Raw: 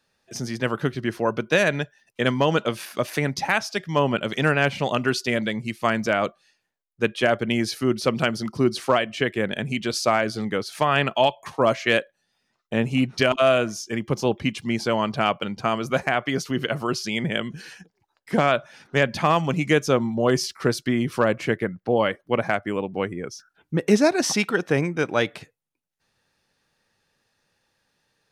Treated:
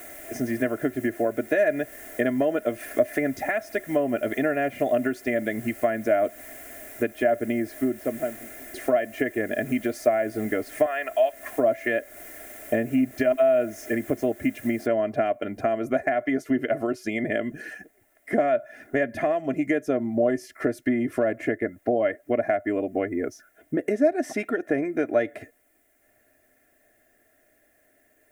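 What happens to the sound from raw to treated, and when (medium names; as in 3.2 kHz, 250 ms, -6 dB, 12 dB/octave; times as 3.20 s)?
7.03–8.74 s: studio fade out
10.86–11.57 s: high-pass 750 Hz
14.86 s: noise floor step -42 dB -66 dB
whole clip: comb 2.9 ms, depth 71%; compression 6:1, threshold -27 dBFS; FFT filter 180 Hz 0 dB, 260 Hz +9 dB, 390 Hz +2 dB, 610 Hz +14 dB, 980 Hz -11 dB, 1.9 kHz +7 dB, 2.7 kHz -8 dB, 4.4 kHz -17 dB, 7.5 kHz -6 dB, 12 kHz -2 dB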